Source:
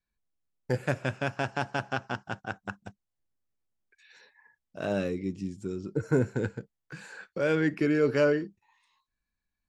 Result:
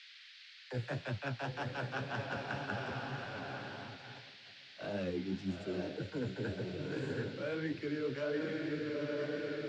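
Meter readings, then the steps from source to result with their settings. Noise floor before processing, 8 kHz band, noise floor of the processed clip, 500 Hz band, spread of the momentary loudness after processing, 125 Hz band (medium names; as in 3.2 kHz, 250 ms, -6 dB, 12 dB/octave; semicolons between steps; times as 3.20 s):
under -85 dBFS, -9.0 dB, -56 dBFS, -8.5 dB, 12 LU, -6.5 dB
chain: low-pass 5.8 kHz 12 dB/octave; echo that smears into a reverb 923 ms, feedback 44%, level -7 dB; reverse; compression 12:1, threshold -33 dBFS, peak gain reduction 14.5 dB; reverse; gate -46 dBFS, range -16 dB; phase dispersion lows, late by 41 ms, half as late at 340 Hz; flange 1.8 Hz, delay 8.3 ms, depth 9.6 ms, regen +37%; band noise 1.6–4.6 kHz -59 dBFS; trim +3 dB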